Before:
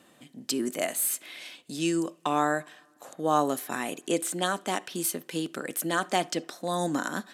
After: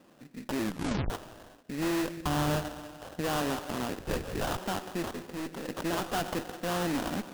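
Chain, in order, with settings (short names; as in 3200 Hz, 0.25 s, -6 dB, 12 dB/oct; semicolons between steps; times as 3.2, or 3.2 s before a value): Wiener smoothing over 15 samples; reverb RT60 1.7 s, pre-delay 73 ms, DRR 15.5 dB; de-esser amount 50%; tube stage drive 32 dB, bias 0.65; 3.99–4.58 LPC vocoder at 8 kHz whisper; sample-rate reducer 2200 Hz, jitter 20%; 0.61 tape stop 0.49 s; 2.17–3.21 bell 62 Hz +14.5 dB 2.4 oct; 5.11–5.69 hard clip -38.5 dBFS, distortion -19 dB; gain +5 dB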